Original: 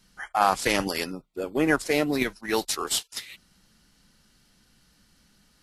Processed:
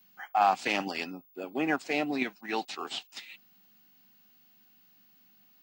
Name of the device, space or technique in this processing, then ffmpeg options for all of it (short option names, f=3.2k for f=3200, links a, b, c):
old television with a line whistle: -filter_complex "[0:a]highpass=f=160:w=0.5412,highpass=f=160:w=1.3066,equalizer=f=260:t=q:w=4:g=4,equalizer=f=490:t=q:w=4:g=-4,equalizer=f=760:t=q:w=4:g=9,equalizer=f=2.6k:t=q:w=4:g=8,equalizer=f=5.6k:t=q:w=4:g=-4,lowpass=f=7k:w=0.5412,lowpass=f=7k:w=1.3066,aeval=exprs='val(0)+0.00251*sin(2*PI*15625*n/s)':c=same,asettb=1/sr,asplit=3[a][b][c];[a]atrim=end=2.064[d];[b]atrim=start=2.06:end=3.02,asetpts=PTS-STARTPTS,afade=t=in:d=0.004:c=qsin,afade=t=out:st=0.956:d=0.004:c=qsin,acrossover=split=4900[e][f];[f]acompressor=threshold=-42dB:ratio=4:attack=1:release=60[g];[e][g]amix=inputs=2:normalize=0[h];[c]atrim=start=3.016[i];[d][h]acrossfade=d=0.004:c1=hsin:c2=qsin[j];[j][i]acrossfade=d=0.004:c1=qsin:c2=hsin,volume=-7.5dB"